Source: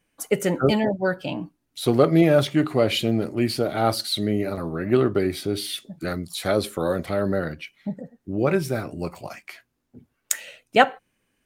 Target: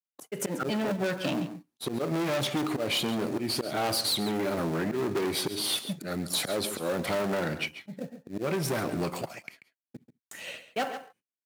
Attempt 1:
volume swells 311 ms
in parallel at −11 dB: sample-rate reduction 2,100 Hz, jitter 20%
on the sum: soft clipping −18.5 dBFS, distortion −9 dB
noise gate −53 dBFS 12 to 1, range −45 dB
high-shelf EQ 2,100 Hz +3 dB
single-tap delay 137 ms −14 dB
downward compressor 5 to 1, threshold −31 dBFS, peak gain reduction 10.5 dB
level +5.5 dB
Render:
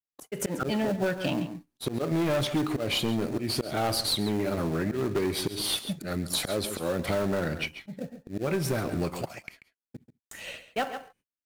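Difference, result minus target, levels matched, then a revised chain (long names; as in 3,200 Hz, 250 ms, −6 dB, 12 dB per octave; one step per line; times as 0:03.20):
soft clipping: distortion −5 dB; 125 Hz band +3.0 dB
volume swells 311 ms
in parallel at −11 dB: sample-rate reduction 2,100 Hz, jitter 20%
on the sum: soft clipping −26.5 dBFS, distortion −4 dB
noise gate −53 dBFS 12 to 1, range −45 dB
high-pass filter 140 Hz 12 dB per octave
high-shelf EQ 2,100 Hz +3 dB
single-tap delay 137 ms −14 dB
downward compressor 5 to 1, threshold −31 dBFS, peak gain reduction 6 dB
level +5.5 dB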